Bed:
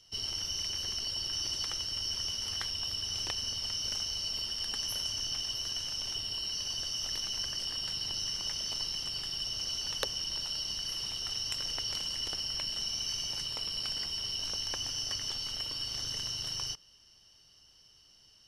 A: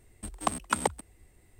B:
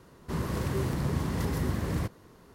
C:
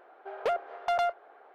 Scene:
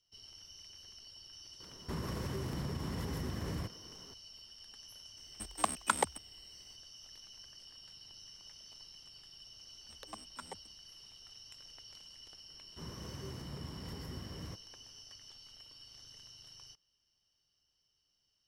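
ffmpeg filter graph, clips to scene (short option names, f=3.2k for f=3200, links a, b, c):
-filter_complex "[2:a]asplit=2[a][b];[1:a]asplit=2[c][d];[0:a]volume=-18.5dB[e];[a]acompressor=threshold=-32dB:ratio=6:attack=3.2:release=140:knee=1:detection=peak[f];[c]lowshelf=f=430:g=-8[g];[d]asplit=2[h][i];[i]adelay=7.2,afreqshift=2.2[j];[h][j]amix=inputs=2:normalize=1[k];[f]atrim=end=2.54,asetpts=PTS-STARTPTS,volume=-2.5dB,afade=t=in:d=0.004:c=hsin,afade=t=out:st=2.536:d=0.004:c=hsin,adelay=1600[l];[g]atrim=end=1.59,asetpts=PTS-STARTPTS,volume=-1.5dB,afade=t=in:d=0.004:c=hsin,afade=t=out:st=1.586:d=0.004:c=hsin,adelay=227997S[m];[k]atrim=end=1.59,asetpts=PTS-STARTPTS,volume=-17dB,afade=t=in:d=0.004:c=hsin,afade=t=out:st=1.586:d=0.004:c=hsin,adelay=9660[n];[b]atrim=end=2.54,asetpts=PTS-STARTPTS,volume=-15.5dB,afade=t=in:d=0.004:c=hsin,afade=t=out:st=2.536:d=0.004:c=hsin,adelay=12480[o];[e][l][m][n][o]amix=inputs=5:normalize=0"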